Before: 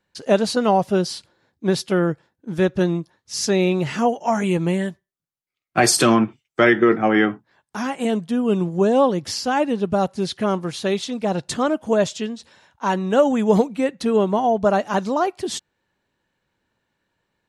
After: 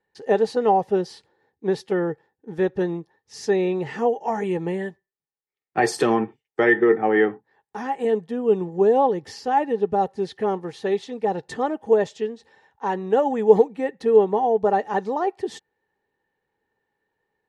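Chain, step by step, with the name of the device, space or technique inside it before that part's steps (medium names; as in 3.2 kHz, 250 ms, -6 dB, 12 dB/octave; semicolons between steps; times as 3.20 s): inside a helmet (treble shelf 5.8 kHz -8.5 dB; small resonant body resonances 440/810/1800 Hz, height 15 dB, ringing for 35 ms); trim -9.5 dB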